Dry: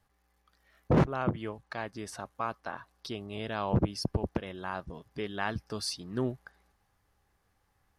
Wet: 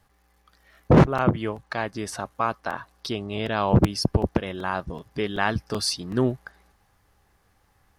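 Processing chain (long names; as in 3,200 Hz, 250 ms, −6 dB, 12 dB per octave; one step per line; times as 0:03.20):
0:03.12–0:03.55: low-pass filter 9,800 Hz → 5,500 Hz 12 dB per octave
regular buffer underruns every 0.38 s, samples 128, repeat, from 0:00.80
level +9 dB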